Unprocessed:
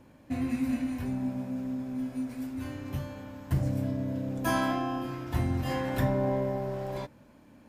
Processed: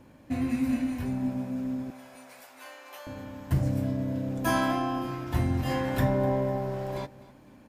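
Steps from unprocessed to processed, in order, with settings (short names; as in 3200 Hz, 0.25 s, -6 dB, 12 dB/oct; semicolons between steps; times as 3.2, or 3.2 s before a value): 1.9–3.07 HPF 590 Hz 24 dB/oct; on a send: feedback echo 0.251 s, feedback 38%, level -19 dB; on the sum: gain +2 dB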